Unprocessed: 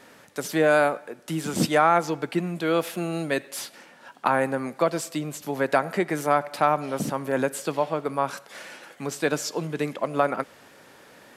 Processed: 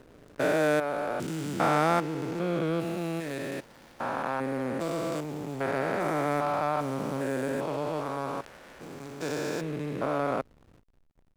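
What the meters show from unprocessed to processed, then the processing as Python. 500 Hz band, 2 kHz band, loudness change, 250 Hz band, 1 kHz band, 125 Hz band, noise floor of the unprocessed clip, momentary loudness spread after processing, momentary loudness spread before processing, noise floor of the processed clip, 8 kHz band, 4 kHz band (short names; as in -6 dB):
-4.5 dB, -5.5 dB, -4.5 dB, -3.0 dB, -5.5 dB, -2.0 dB, -52 dBFS, 11 LU, 15 LU, -61 dBFS, -10.0 dB, -6.5 dB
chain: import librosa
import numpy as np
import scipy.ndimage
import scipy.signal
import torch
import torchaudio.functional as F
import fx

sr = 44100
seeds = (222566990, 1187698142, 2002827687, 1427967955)

y = fx.spec_steps(x, sr, hold_ms=400)
y = fx.backlash(y, sr, play_db=-37.5)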